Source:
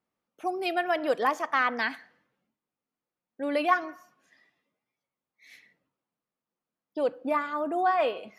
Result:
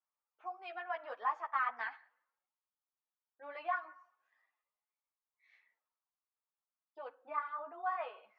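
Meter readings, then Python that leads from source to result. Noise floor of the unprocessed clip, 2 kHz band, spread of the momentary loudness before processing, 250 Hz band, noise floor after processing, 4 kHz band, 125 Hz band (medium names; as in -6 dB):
under -85 dBFS, -11.5 dB, 11 LU, -31.0 dB, under -85 dBFS, -19.5 dB, no reading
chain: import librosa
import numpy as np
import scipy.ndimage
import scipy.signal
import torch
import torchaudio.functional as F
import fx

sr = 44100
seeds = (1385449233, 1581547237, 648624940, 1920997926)

y = fx.ladder_bandpass(x, sr, hz=1200.0, resonance_pct=35)
y = fx.ensemble(y, sr)
y = F.gain(torch.from_numpy(y), 3.0).numpy()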